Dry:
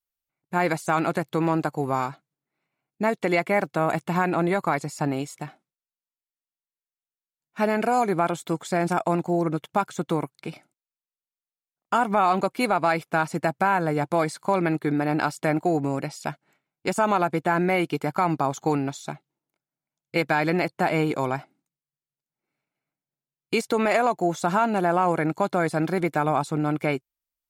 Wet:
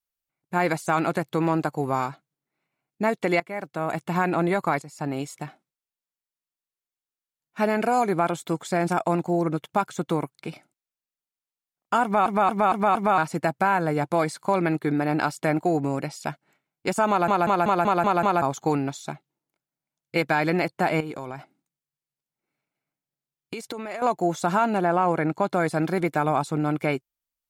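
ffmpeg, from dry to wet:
-filter_complex "[0:a]asettb=1/sr,asplit=3[a][b][c];[a]atrim=end=21.004[d];[b]atrim=start=21:end=24.02,asetpts=PTS-STARTPTS,afade=t=in:d=0.004:c=qsin,afade=t=out:st=3.016:d=0.004:c=qsin,acompressor=threshold=-29dB:ratio=12:attack=3.2:release=140:knee=1:detection=peak[e];[c]atrim=start=24.016[f];[d][e]acrossfade=d=0.004:c1=hsin:c2=qsin[g];[g][f]acrossfade=d=0.004:c1=qsin:c2=hsin,asettb=1/sr,asplit=3[h][i][j];[h]atrim=end=24.774[k];[i]atrim=start=24.77:end=25.51,asetpts=PTS-STARTPTS,afade=t=in:d=0.004:c=qsin,afade=t=out:st=0.736:d=0.004:c=qsin,highshelf=f=6.1k:g=-9[l];[j]atrim=start=25.506[m];[k][l]acrossfade=d=0.004:c1=hsin:c2=qsin[n];[n][m]acrossfade=d=0.004:c1=qsin:c2=hsin,asplit=15[o][p][q][r][s][t][u][v][w][x][y][z][aa][ab][ac];[o]atrim=end=3.4,asetpts=PTS-STARTPTS,afade=t=out:st=3.396:d=0.004:c=hsin:silence=0.158489[ad];[p]atrim=start=3.4:end=4.82,asetpts=PTS-STARTPTS,afade=t=in:d=0.84:silence=0.158489,afade=t=out:st=1.416:d=0.004:c=hsin:silence=0.211349[ae];[q]atrim=start=4.82:end=12.262,asetpts=PTS-STARTPTS,afade=t=in:d=0.44:silence=0.211349[af];[r]atrim=start=12.028:end=12.262[ag];[s]atrim=start=12.028:end=12.262[ah];[t]atrim=start=12.028:end=12.262[ai];[u]atrim=start=12.028:end=12.262[aj];[v]atrim=start=13.178:end=17.282[ak];[w]atrim=start=17.088:end=17.282[al];[x]atrim=start=17.088:end=17.282[am];[y]atrim=start=17.088:end=17.282[an];[z]atrim=start=17.088:end=17.282[ao];[aa]atrim=start=17.088:end=17.282[ap];[ab]atrim=start=17.088:end=17.282[aq];[ac]atrim=start=18.418[ar];[ad][ae][af]concat=n=3:v=0:a=1[as];[as][ag]acrossfade=d=0.004:c1=hsin:c2=hsin[at];[at][ah]acrossfade=d=0.004:c1=hsin:c2=hsin[au];[au][ai]acrossfade=d=0.004:c1=hsin:c2=hsin[av];[av][aj]acrossfade=d=0.004:c1=hsin:c2=hsin[aw];[aw][ak]acrossfade=d=0.004:c1=hsin:c2=hsin[ax];[ax][al]acrossfade=d=0.004:c1=hsin:c2=hsin[ay];[ay][am]acrossfade=d=0.004:c1=hsin:c2=hsin[az];[az][an]acrossfade=d=0.004:c1=hsin:c2=hsin[ba];[ba][ao]acrossfade=d=0.004:c1=hsin:c2=hsin[bb];[bb][ap]acrossfade=d=0.004:c1=hsin:c2=hsin[bc];[bc][aq]acrossfade=d=0.004:c1=hsin:c2=hsin[bd];[bd][ar]acrossfade=d=0.004:c1=hsin:c2=hsin"

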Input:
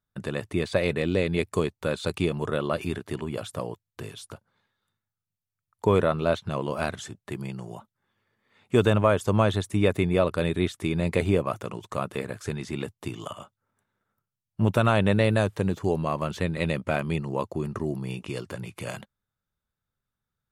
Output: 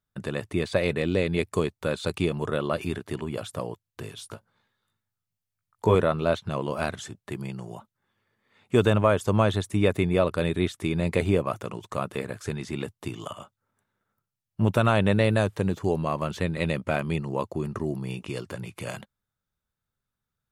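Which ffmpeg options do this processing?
-filter_complex "[0:a]asettb=1/sr,asplit=3[a][b][c];[a]atrim=end=4.164[d];[b]atrim=start=4.16:end=5.95,asetpts=PTS-STARTPTS,afade=t=in:d=0.004:c=qsin,afade=t=out:st=1.786:d=0.004:c=qsin,asplit=2[e][f];[f]adelay=18,volume=-4.5dB[g];[e][g]amix=inputs=2:normalize=0,atrim=end_sample=78939[h];[c]atrim=start=5.946[i];[d][h]acrossfade=d=0.004:c1=hsin:c2=qsin[j];[j][i]acrossfade=d=0.004:c1=qsin:c2=hsin"

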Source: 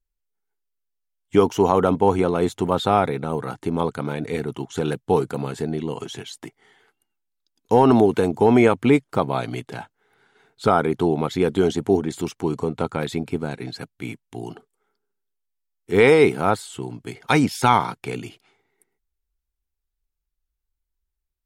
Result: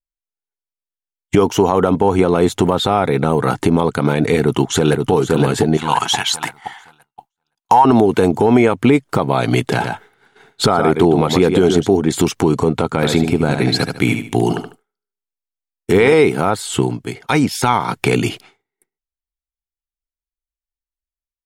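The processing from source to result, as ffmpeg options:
-filter_complex "[0:a]asplit=2[a][b];[b]afade=t=in:st=4.4:d=0.01,afade=t=out:st=5.11:d=0.01,aecho=0:1:520|1040|1560|2080|2600:0.595662|0.238265|0.0953059|0.0381224|0.015249[c];[a][c]amix=inputs=2:normalize=0,asettb=1/sr,asplit=3[d][e][f];[d]atrim=end=5.774[g];[e]atrim=start=5.77:end=7.85,asetpts=PTS-STARTPTS,afade=t=in:d=0.004:c=qsin,afade=t=out:st=2.076:d=0.004:c=qsin,lowshelf=f=610:t=q:w=3:g=-12[h];[f]atrim=start=7.846[i];[g][h]acrossfade=d=0.004:c1=hsin:c2=qsin[j];[j][i]acrossfade=d=0.004:c1=qsin:c2=hsin,asplit=3[k][l][m];[k]afade=t=out:st=9.76:d=0.02[n];[l]aecho=1:1:117:0.376,afade=t=in:st=9.76:d=0.02,afade=t=out:st=11.87:d=0.02[o];[m]afade=t=in:st=11.87:d=0.02[p];[n][o][p]amix=inputs=3:normalize=0,asplit=3[q][r][s];[q]afade=t=out:st=12.92:d=0.02[t];[r]aecho=1:1:74|148|222:0.376|0.105|0.0295,afade=t=in:st=12.92:d=0.02,afade=t=out:st=16.13:d=0.02[u];[s]afade=t=in:st=16.13:d=0.02[v];[t][u][v]amix=inputs=3:normalize=0,asplit=3[w][x][y];[w]atrim=end=16.99,asetpts=PTS-STARTPTS,afade=t=out:st=16.79:d=0.2:silence=0.281838[z];[x]atrim=start=16.99:end=17.86,asetpts=PTS-STARTPTS,volume=-11dB[aa];[y]atrim=start=17.86,asetpts=PTS-STARTPTS,afade=t=in:d=0.2:silence=0.281838[ab];[z][aa][ab]concat=n=3:v=0:a=1,agate=range=-33dB:threshold=-50dB:ratio=3:detection=peak,acompressor=threshold=-29dB:ratio=4,alimiter=level_in=20dB:limit=-1dB:release=50:level=0:latency=1,volume=-1dB"

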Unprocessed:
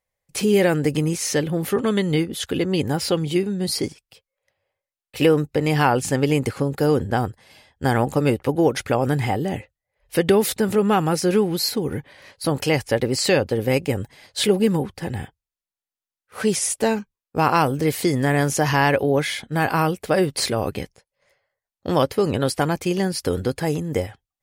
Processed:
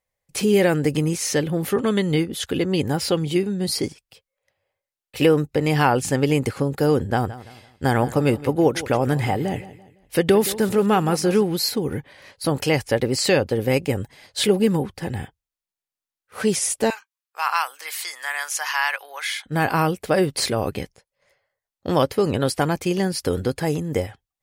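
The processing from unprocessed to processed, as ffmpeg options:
-filter_complex "[0:a]asettb=1/sr,asplit=3[a][b][c];[a]atrim=end=7.084[d];[b]atrim=start=7.08:end=11.43,asetpts=PTS-STARTPTS,afade=t=in:d=0.004:c=qsin,afade=t=out:st=4.346:d=0.004:c=qsin,aecho=1:1:169|338|507:0.15|0.0554|0.0205,atrim=end_sample=191835[e];[c]atrim=start=11.426[f];[d][e]acrossfade=d=0.004:c1=hsin:c2=qsin[g];[g][f]acrossfade=d=0.004:c1=qsin:c2=hsin,asettb=1/sr,asplit=3[h][i][j];[h]atrim=end=16.904[k];[i]atrim=start=16.9:end=19.46,asetpts=PTS-STARTPTS,afade=t=in:d=0.004:c=qsin,afade=t=out:st=2.556:d=0.004:c=qsin,highpass=f=1k:w=0.5412,highpass=f=1k:w=1.3066[l];[j]atrim=start=19.456[m];[k][l]acrossfade=d=0.004:c1=hsin:c2=qsin[n];[n][m]acrossfade=d=0.004:c1=qsin:c2=hsin"

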